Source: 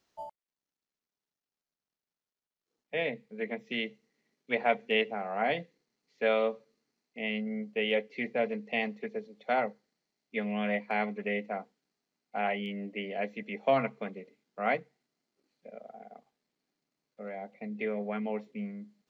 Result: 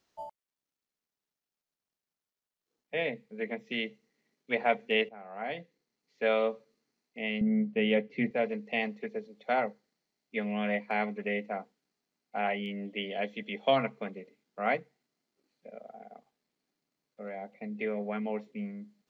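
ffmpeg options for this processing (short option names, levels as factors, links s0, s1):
-filter_complex "[0:a]asettb=1/sr,asplit=3[s0][s1][s2];[s0]atrim=end=7.414[s3];[s1]atrim=start=7.41:end=8.31,asetpts=PTS-STARTPTS,afade=t=in:d=0.004:c=qsin,afade=t=out:st=0.896:d=0.004:c=qsin,bass=f=250:g=14,treble=f=4000:g=-8[s4];[s2]atrim=start=8.306[s5];[s3][s4]acrossfade=d=0.004:c1=hsin:c2=qsin[s6];[s6][s5]acrossfade=d=0.004:c1=qsin:c2=hsin,asettb=1/sr,asplit=3[s7][s8][s9];[s7]atrim=end=12.854[s10];[s8]atrim=start=12.85:end=13.76,asetpts=PTS-STARTPTS,afade=t=in:d=0.004:c=qsin,afade=t=out:st=0.906:d=0.004:c=qsin,equalizer=f=3300:w=5.9:g=14.5[s11];[s9]atrim=start=13.756[s12];[s10][s11]acrossfade=d=0.004:c1=hsin:c2=qsin[s13];[s13][s12]acrossfade=d=0.004:c1=qsin:c2=hsin,asplit=2[s14][s15];[s14]atrim=end=5.09,asetpts=PTS-STARTPTS,afade=t=out:st=5.086:d=0.004:c=hsin:silence=0.188365[s16];[s15]atrim=start=5.09,asetpts=PTS-STARTPTS,afade=t=in:d=1.25:silence=0.188365[s17];[s16][s17]concat=n=2:v=0:a=1"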